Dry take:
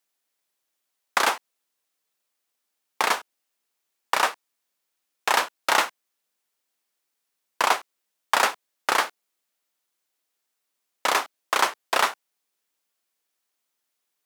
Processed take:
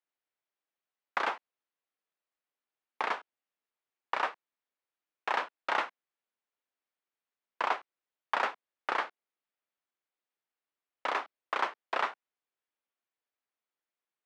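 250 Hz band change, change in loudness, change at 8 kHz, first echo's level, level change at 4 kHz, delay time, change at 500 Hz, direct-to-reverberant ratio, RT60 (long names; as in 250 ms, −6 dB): −9.5 dB, −10.0 dB, below −25 dB, no echo audible, −15.0 dB, no echo audible, −8.5 dB, no reverb audible, no reverb audible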